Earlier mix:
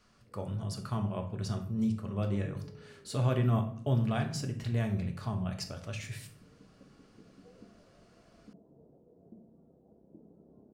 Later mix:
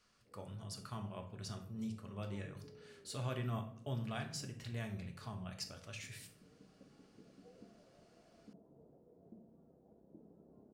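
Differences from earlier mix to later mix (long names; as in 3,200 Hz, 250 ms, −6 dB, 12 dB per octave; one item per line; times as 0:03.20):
speech −8.0 dB
master: add tilt shelving filter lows −4.5 dB, about 1,100 Hz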